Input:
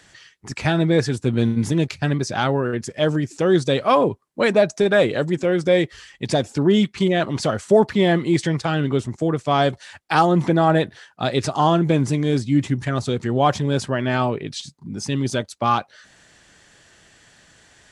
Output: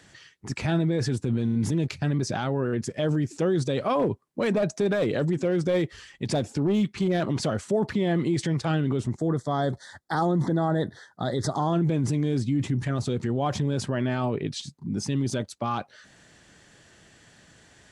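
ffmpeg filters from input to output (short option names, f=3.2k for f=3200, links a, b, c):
-filter_complex "[0:a]asettb=1/sr,asplit=3[a][b][c];[a]atrim=end=3.994[d];[b]atrim=start=3.99:end=7.36,asetpts=PTS-STARTPTS,afade=t=in:d=0.004:c=qsin,afade=t=out:st=3.366:d=0.004:c=qsin,aeval=exprs='clip(val(0),-1,0.251)':c=same[e];[c]atrim=start=7.356[f];[d][e]acrossfade=d=0.004:c1=hsin:c2=qsin[g];[g][f]acrossfade=d=0.004:c1=qsin:c2=hsin,asettb=1/sr,asplit=3[h][i][j];[h]atrim=end=9.184[k];[i]atrim=start=9.18:end=11.73,asetpts=PTS-STARTPTS,afade=t=in:d=0.004:c=qsin,afade=t=out:st=2.546:d=0.004:c=qsin,asuperstop=centerf=2600:order=8:qfactor=2[l];[j]atrim=start=11.726[m];[k][l]acrossfade=d=0.004:c1=hsin:c2=qsin[n];[n][m]acrossfade=d=0.004:c1=qsin:c2=hsin,lowshelf=f=380:g=9.5,alimiter=limit=-12dB:level=0:latency=1:release=26,lowshelf=f=77:g=-10.5,volume=-4dB"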